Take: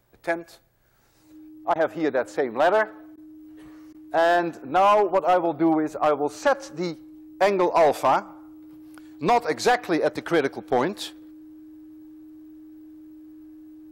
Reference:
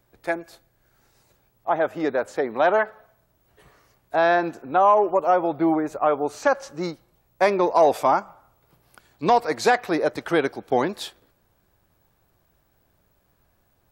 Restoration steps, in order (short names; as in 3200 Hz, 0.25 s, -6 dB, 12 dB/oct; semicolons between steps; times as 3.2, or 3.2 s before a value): clip repair -13 dBFS; notch 310 Hz, Q 30; interpolate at 1.74/3.16/3.93, 14 ms